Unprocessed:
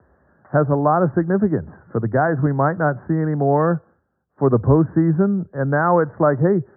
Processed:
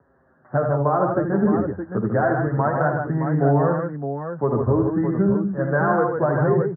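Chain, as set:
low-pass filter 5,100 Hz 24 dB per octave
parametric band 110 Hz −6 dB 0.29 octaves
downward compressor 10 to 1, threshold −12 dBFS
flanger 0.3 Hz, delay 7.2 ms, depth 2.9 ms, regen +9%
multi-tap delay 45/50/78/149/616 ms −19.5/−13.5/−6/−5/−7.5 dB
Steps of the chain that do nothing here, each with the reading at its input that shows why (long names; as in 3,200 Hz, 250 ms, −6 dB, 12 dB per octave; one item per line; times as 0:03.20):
low-pass filter 5,100 Hz: nothing at its input above 1,800 Hz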